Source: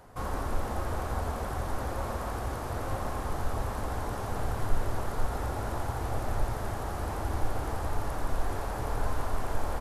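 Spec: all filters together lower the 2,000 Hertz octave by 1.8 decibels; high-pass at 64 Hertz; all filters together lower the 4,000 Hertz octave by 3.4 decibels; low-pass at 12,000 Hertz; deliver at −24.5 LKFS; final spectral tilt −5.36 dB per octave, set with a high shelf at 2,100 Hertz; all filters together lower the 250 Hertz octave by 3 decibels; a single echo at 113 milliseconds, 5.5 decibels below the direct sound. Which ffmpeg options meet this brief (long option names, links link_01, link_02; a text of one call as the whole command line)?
ffmpeg -i in.wav -af "highpass=64,lowpass=12000,equalizer=frequency=250:width_type=o:gain=-4,equalizer=frequency=2000:width_type=o:gain=-3.5,highshelf=frequency=2100:gain=5,equalizer=frequency=4000:width_type=o:gain=-8.5,aecho=1:1:113:0.531,volume=10.5dB" out.wav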